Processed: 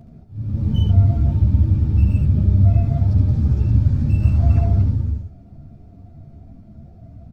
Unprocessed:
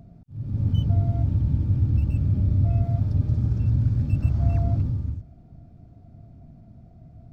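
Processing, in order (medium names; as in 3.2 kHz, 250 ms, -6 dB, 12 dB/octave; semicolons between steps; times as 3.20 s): delay 72 ms -5 dB; three-phase chorus; trim +8 dB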